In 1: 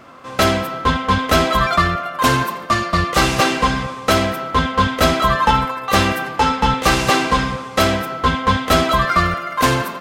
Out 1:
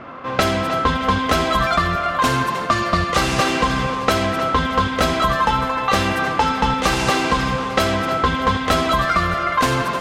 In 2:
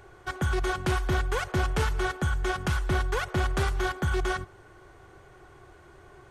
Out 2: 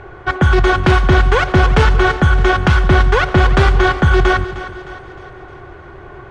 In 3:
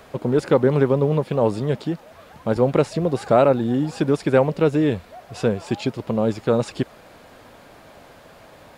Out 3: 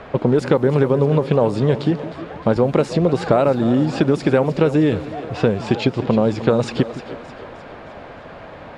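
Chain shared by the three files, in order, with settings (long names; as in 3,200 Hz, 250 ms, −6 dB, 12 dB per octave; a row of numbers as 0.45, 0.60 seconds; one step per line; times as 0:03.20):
low-pass that shuts in the quiet parts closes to 2,500 Hz, open at −11 dBFS
downward compressor 6 to 1, threshold −22 dBFS
echo with a time of its own for lows and highs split 310 Hz, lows 163 ms, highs 308 ms, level −13.5 dB
normalise the peak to −2 dBFS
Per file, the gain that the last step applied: +7.0, +16.0, +9.5 decibels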